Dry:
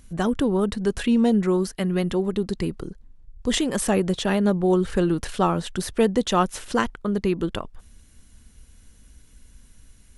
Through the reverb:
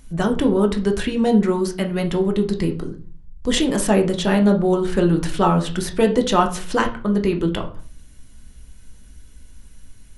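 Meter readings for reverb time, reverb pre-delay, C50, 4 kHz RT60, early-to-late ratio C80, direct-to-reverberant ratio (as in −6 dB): 0.40 s, 3 ms, 12.5 dB, 0.30 s, 17.0 dB, 3.0 dB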